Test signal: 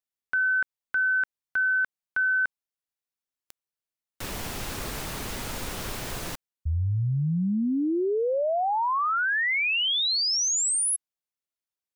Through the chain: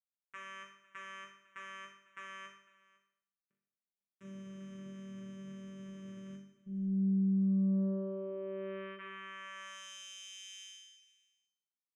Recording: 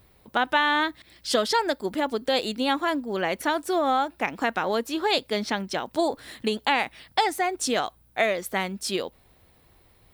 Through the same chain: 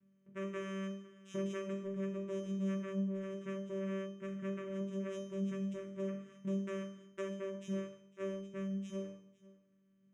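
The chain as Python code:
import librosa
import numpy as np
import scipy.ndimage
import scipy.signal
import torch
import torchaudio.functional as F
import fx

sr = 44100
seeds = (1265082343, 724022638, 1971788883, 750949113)

p1 = fx.notch(x, sr, hz=1100.0, q=18.0)
p2 = (np.mod(10.0 ** (21.0 / 20.0) * p1 + 1.0, 2.0) - 1.0) / 10.0 ** (21.0 / 20.0)
p3 = p1 + F.gain(torch.from_numpy(p2), -9.5).numpy()
p4 = fx.vocoder(p3, sr, bands=4, carrier='saw', carrier_hz=193.0)
p5 = fx.fixed_phaser(p4, sr, hz=1900.0, stages=4)
p6 = fx.resonator_bank(p5, sr, root=43, chord='minor', decay_s=0.69)
p7 = p6 + fx.echo_single(p6, sr, ms=502, db=-21.0, dry=0)
y = F.gain(torch.from_numpy(p7), 5.0).numpy()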